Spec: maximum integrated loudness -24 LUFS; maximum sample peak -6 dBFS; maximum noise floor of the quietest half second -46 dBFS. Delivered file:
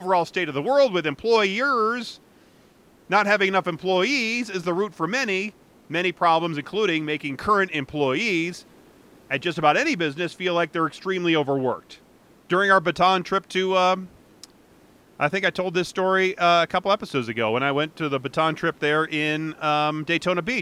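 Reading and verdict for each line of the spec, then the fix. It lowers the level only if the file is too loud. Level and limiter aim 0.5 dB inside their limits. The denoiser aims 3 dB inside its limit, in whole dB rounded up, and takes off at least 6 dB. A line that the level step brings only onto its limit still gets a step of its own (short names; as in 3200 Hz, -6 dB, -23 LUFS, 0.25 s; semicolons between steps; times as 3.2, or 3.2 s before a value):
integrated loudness -22.5 LUFS: fail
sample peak -5.5 dBFS: fail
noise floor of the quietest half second -55 dBFS: OK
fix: gain -2 dB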